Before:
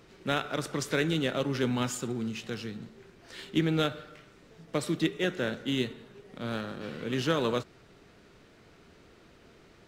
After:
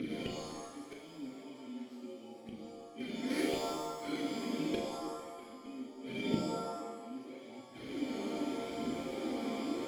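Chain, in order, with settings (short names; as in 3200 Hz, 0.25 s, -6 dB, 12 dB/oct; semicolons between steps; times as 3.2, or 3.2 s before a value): FFT order left unsorted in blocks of 16 samples; bell 730 Hz +11 dB 1.1 oct; in parallel at +2.5 dB: compressor, threshold -34 dBFS, peak gain reduction 15 dB; on the sum: hard clip -24 dBFS, distortion -7 dB; vowel filter i; flipped gate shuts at -41 dBFS, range -31 dB; phaser 0.79 Hz, delay 4.9 ms, feedback 56%; on a send: flutter echo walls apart 6.5 m, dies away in 0.27 s; on the sum: shimmer reverb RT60 1 s, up +7 st, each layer -2 dB, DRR 2.5 dB; gain +16.5 dB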